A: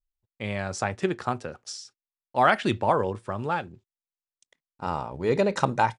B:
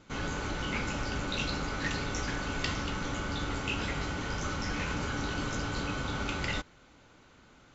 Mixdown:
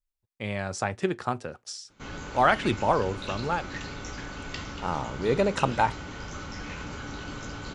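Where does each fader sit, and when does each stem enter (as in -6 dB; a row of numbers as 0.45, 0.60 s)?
-1.0, -4.0 dB; 0.00, 1.90 s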